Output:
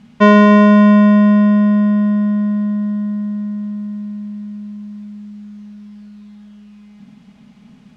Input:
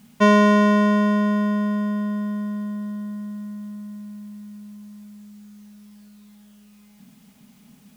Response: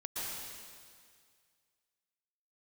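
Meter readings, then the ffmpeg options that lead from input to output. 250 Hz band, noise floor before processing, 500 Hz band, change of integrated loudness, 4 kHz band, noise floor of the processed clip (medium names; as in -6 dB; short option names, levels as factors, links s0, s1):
+9.5 dB, -52 dBFS, +6.0 dB, +8.0 dB, no reading, -46 dBFS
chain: -filter_complex "[0:a]lowpass=4000,asplit=2[s0][s1];[1:a]atrim=start_sample=2205,lowpass=3000,lowshelf=f=220:g=9[s2];[s1][s2]afir=irnorm=-1:irlink=0,volume=0.266[s3];[s0][s3]amix=inputs=2:normalize=0,volume=1.78"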